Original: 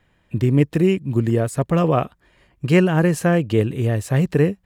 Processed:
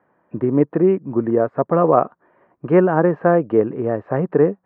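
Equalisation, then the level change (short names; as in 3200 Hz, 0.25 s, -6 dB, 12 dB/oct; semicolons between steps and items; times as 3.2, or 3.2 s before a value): HPF 200 Hz 12 dB/oct; LPF 1300 Hz 24 dB/oct; low shelf 260 Hz -10.5 dB; +7.5 dB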